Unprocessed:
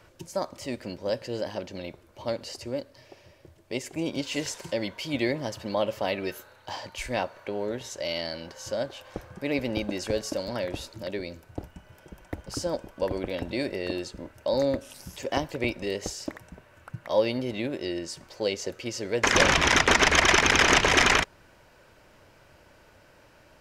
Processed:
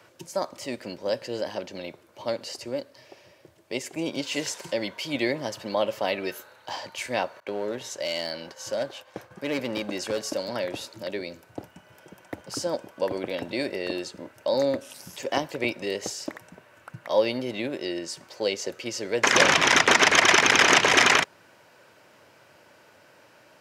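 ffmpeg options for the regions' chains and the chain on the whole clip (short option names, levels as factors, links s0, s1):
-filter_complex "[0:a]asettb=1/sr,asplit=3[s0][s1][s2];[s0]atrim=end=7.404[s3];[s1]atrim=start=7.4:end=10.23,asetpts=PTS-STARTPTS,afade=t=in:d=0.004:c=qsin,afade=t=out:st=2.826:d=0.004:c=qsin,agate=range=0.0224:threshold=0.00631:ratio=3:release=100:detection=peak,volume=14.1,asoftclip=hard,volume=0.0708[s4];[s2]atrim=start=10.226[s5];[s3][s4]acrossfade=d=0.004:c1=hsin:c2=qsin[s6];[s6][s5]acrossfade=d=0.004:c1=qsin:c2=hsin,highpass=f=100:w=0.5412,highpass=f=100:w=1.3066,lowshelf=f=200:g=-8.5,volume=1.33"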